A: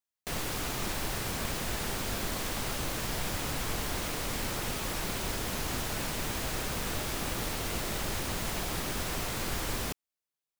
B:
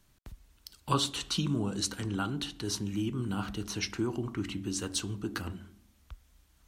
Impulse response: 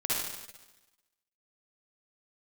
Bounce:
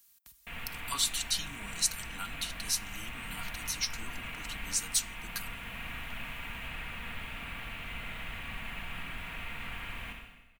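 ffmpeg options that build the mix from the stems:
-filter_complex "[0:a]highshelf=f=3700:t=q:w=3:g=-13,adelay=200,volume=0.299,asplit=2[s0][s1];[s1]volume=0.447[s2];[1:a]aemphasis=mode=production:type=riaa,volume=0.501,asplit=2[s3][s4];[s4]apad=whole_len=475906[s5];[s0][s5]sidechaincompress=threshold=0.0178:ratio=8:attack=23:release=788[s6];[2:a]atrim=start_sample=2205[s7];[s2][s7]afir=irnorm=-1:irlink=0[s8];[s6][s3][s8]amix=inputs=3:normalize=0,equalizer=f=410:t=o:w=1.5:g=-13.5,aecho=1:1:4.3:0.35"

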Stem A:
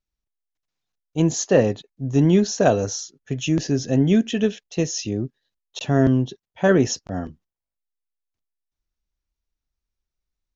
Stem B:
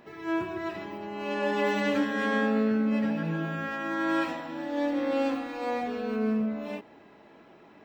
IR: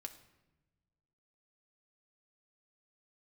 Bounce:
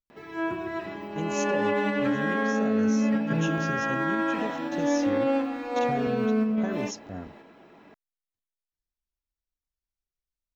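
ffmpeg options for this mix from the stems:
-filter_complex "[0:a]acompressor=threshold=0.112:ratio=6,volume=0.316,asplit=2[s0][s1];[1:a]acrossover=split=2800[s2][s3];[s3]acompressor=threshold=0.002:ratio=4:attack=1:release=60[s4];[s2][s4]amix=inputs=2:normalize=0,adelay=100,volume=1.41,asplit=2[s5][s6];[s6]volume=0.562[s7];[s1]apad=whole_len=350252[s8];[s5][s8]sidechaingate=range=0.501:threshold=0.00141:ratio=16:detection=peak[s9];[2:a]atrim=start_sample=2205[s10];[s7][s10]afir=irnorm=-1:irlink=0[s11];[s0][s9][s11]amix=inputs=3:normalize=0,alimiter=limit=0.15:level=0:latency=1:release=156"

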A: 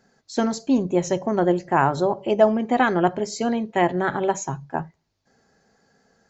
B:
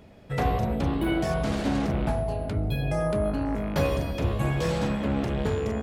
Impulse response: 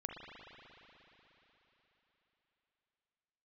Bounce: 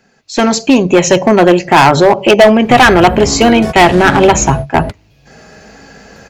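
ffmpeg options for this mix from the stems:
-filter_complex "[0:a]acrossover=split=440|3000[s0][s1][s2];[s0]acompressor=threshold=0.0501:ratio=4[s3];[s3][s1][s2]amix=inputs=3:normalize=0,equalizer=f=2600:t=o:w=0.51:g=12,volume=1,asplit=2[s4][s5];[1:a]acompressor=threshold=0.0316:ratio=6,adelay=2400,volume=0.794[s6];[s5]apad=whole_len=367133[s7];[s6][s7]sidechaingate=range=0.0224:threshold=0.02:ratio=16:detection=peak[s8];[s4][s8]amix=inputs=2:normalize=0,acontrast=87,volume=3.76,asoftclip=hard,volume=0.266,dynaudnorm=f=270:g=3:m=6.68"

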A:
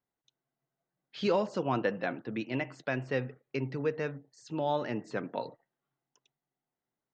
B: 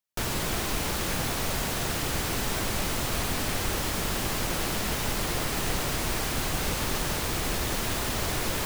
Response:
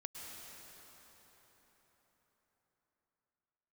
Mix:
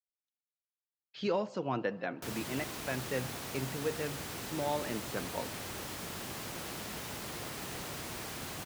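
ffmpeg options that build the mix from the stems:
-filter_complex "[0:a]agate=range=0.0224:threshold=0.002:ratio=3:detection=peak,volume=0.596,asplit=2[s0][s1];[s1]volume=0.141[s2];[1:a]highpass=93,adelay=2050,volume=0.266[s3];[2:a]atrim=start_sample=2205[s4];[s2][s4]afir=irnorm=-1:irlink=0[s5];[s0][s3][s5]amix=inputs=3:normalize=0"

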